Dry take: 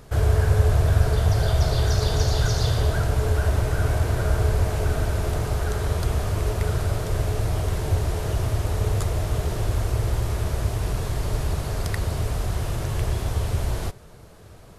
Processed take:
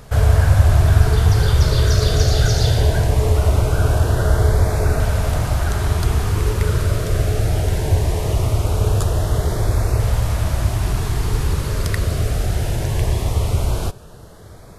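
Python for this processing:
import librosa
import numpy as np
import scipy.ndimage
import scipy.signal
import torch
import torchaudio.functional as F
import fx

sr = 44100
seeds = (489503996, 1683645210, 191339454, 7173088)

y = fx.filter_lfo_notch(x, sr, shape='saw_up', hz=0.2, low_hz=330.0, high_hz=3300.0, q=2.6)
y = y * librosa.db_to_amplitude(6.0)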